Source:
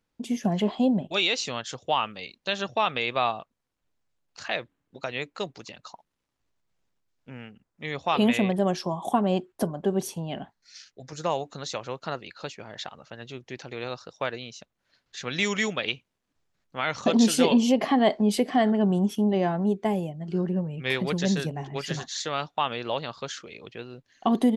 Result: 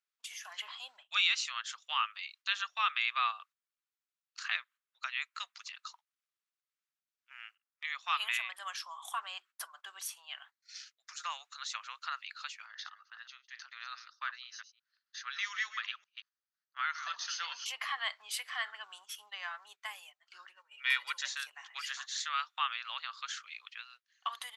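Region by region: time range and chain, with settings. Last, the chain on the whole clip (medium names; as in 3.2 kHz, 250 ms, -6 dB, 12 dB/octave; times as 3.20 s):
12.66–17.66 s: chunks repeated in reverse 178 ms, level -11 dB + rippled Chebyshev low-pass 6.5 kHz, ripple 6 dB + peaking EQ 2.3 kHz -8.5 dB 0.38 oct
20.55–21.26 s: peaking EQ 330 Hz -4.5 dB 0.32 oct + comb 2.1 ms, depth 60%
whole clip: Chebyshev high-pass 1.2 kHz, order 4; gate -56 dBFS, range -10 dB; dynamic bell 4.9 kHz, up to -5 dB, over -44 dBFS, Q 0.71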